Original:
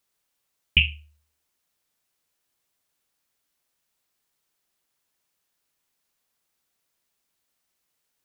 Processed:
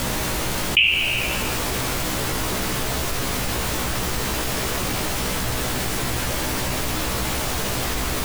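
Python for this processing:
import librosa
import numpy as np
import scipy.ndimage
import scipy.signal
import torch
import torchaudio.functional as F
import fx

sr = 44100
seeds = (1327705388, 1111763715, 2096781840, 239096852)

y = fx.highpass(x, sr, hz=1100.0, slope=6)
y = fx.dmg_noise_colour(y, sr, seeds[0], colour='pink', level_db=-50.0)
y = fx.doubler(y, sr, ms=16.0, db=-2.5)
y = fx.room_flutter(y, sr, wall_m=12.0, rt60_s=0.31)
y = fx.rev_plate(y, sr, seeds[1], rt60_s=2.2, hf_ratio=0.55, predelay_ms=0, drr_db=10.5)
y = fx.env_flatten(y, sr, amount_pct=70)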